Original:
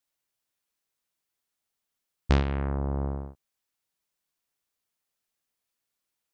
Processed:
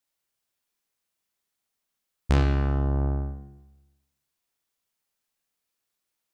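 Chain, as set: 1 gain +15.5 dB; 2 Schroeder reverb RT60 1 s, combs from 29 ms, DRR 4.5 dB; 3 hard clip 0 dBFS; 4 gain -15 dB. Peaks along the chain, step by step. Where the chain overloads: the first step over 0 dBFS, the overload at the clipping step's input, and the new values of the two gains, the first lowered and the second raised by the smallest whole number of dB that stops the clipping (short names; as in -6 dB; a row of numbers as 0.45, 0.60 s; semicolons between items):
+5.0, +5.0, 0.0, -15.0 dBFS; step 1, 5.0 dB; step 1 +10.5 dB, step 4 -10 dB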